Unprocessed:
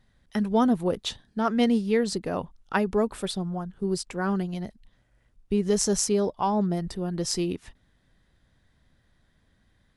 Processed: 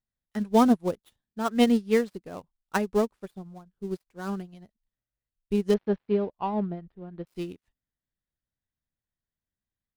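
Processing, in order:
gap after every zero crossing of 0.088 ms
0:05.74–0:07.27: Bessel low-pass filter 2,300 Hz, order 6
expander for the loud parts 2.5 to 1, over −40 dBFS
level +3.5 dB

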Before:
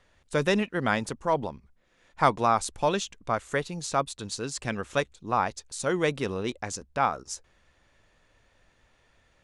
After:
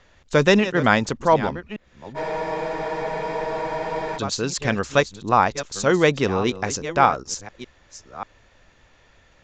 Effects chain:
delay that plays each chunk backwards 588 ms, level −13 dB
downsampling to 16,000 Hz
frozen spectrum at 0:02.18, 1.98 s
level +8.5 dB

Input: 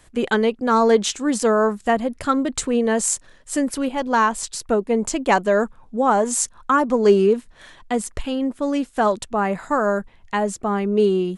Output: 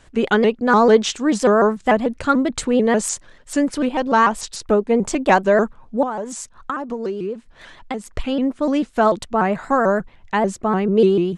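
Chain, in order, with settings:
0:06.03–0:08.13: downward compressor 8 to 1, threshold −26 dBFS, peak gain reduction 16.5 dB
high-frequency loss of the air 61 metres
pitch modulation by a square or saw wave saw up 6.8 Hz, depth 160 cents
level +3 dB

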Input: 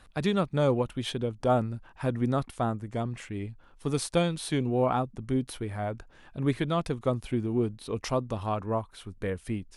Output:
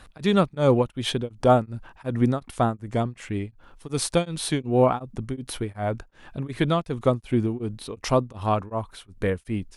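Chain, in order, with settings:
tremolo along a rectified sine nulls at 2.7 Hz
level +7.5 dB

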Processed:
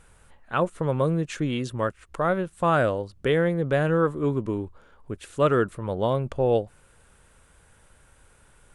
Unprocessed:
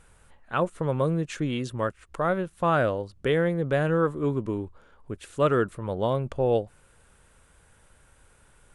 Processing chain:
0:02.52–0:03.00: parametric band 8,100 Hz +9 dB 0.3 octaves
level +1.5 dB

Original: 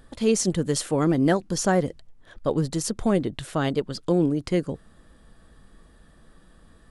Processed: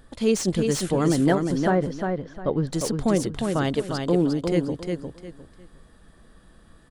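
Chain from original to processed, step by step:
0:01.35–0:02.67: high-frequency loss of the air 250 metres
on a send: repeating echo 354 ms, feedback 26%, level −5 dB
on the sum: slew-rate limiting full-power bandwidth 280 Hz

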